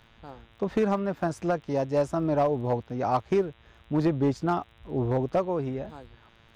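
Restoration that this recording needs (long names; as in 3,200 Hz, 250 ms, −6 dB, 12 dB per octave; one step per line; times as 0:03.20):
clipped peaks rebuilt −17 dBFS
click removal
hum removal 114.2 Hz, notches 34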